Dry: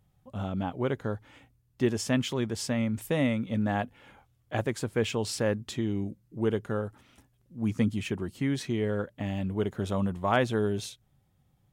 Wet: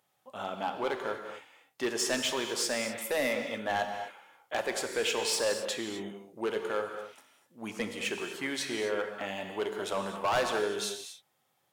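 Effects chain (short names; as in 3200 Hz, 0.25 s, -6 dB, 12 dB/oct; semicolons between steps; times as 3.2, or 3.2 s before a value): HPF 580 Hz 12 dB/oct; overloaded stage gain 29 dB; non-linear reverb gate 0.28 s flat, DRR 4.5 dB; gain +4.5 dB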